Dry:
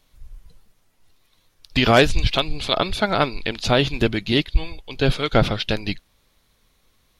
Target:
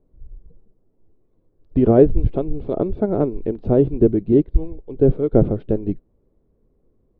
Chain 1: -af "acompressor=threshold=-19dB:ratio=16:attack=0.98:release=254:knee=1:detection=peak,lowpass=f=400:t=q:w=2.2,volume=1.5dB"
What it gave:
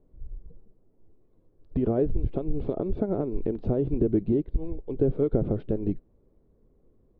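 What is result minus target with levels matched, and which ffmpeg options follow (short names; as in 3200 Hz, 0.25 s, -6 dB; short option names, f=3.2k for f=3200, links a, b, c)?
compressor: peak gain reduction +14 dB
-af "lowpass=f=400:t=q:w=2.2,volume=1.5dB"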